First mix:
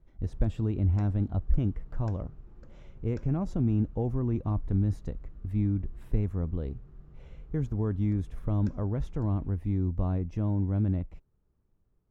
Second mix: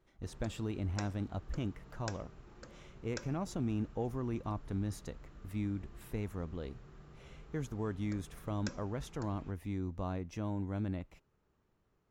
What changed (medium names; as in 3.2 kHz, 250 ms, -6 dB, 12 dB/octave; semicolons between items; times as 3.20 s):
background +8.0 dB; master: add tilt EQ +3.5 dB/octave